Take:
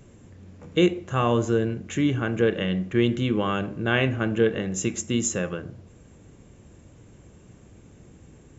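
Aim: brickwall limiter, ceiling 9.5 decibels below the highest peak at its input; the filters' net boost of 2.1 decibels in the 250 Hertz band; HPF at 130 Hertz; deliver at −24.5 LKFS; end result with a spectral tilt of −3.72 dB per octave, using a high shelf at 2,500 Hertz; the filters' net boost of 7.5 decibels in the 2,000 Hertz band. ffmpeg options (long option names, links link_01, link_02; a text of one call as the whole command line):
ffmpeg -i in.wav -af "highpass=130,equalizer=frequency=250:width_type=o:gain=3,equalizer=frequency=2000:width_type=o:gain=6,highshelf=frequency=2500:gain=8.5,volume=-0.5dB,alimiter=limit=-12dB:level=0:latency=1" out.wav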